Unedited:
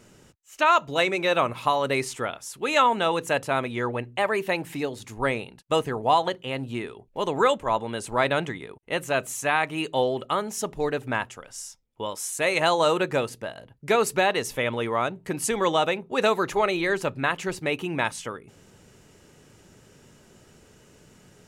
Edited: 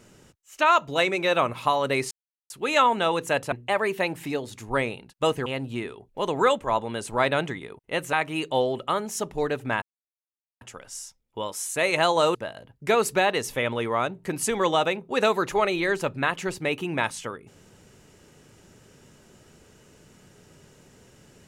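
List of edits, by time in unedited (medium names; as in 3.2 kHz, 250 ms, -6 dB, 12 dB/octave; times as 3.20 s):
2.11–2.50 s: mute
3.52–4.01 s: delete
5.95–6.45 s: delete
9.12–9.55 s: delete
11.24 s: insert silence 0.79 s
12.98–13.36 s: delete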